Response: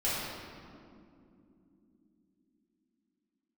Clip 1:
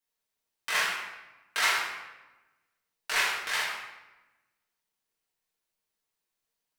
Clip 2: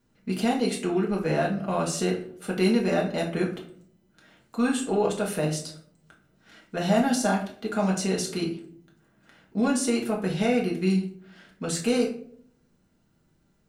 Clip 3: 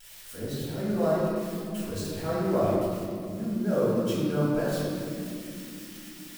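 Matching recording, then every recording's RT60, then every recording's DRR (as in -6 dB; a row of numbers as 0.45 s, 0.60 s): 3; 1.0 s, 0.60 s, no single decay rate; -7.5 dB, -2.5 dB, -11.0 dB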